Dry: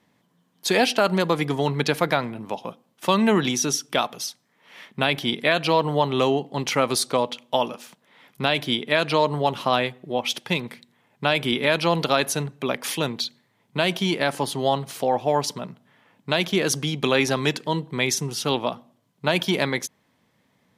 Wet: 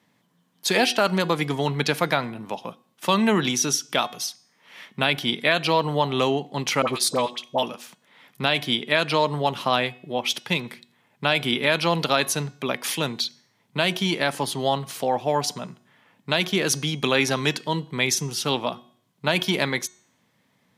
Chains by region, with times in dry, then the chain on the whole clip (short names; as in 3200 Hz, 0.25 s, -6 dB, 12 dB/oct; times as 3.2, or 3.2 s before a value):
6.82–7.63 notch 1400 Hz, Q 10 + dispersion highs, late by 56 ms, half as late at 1000 Hz
whole clip: HPF 99 Hz; bell 430 Hz -3.5 dB 2.5 oct; de-hum 365.4 Hz, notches 24; gain +1.5 dB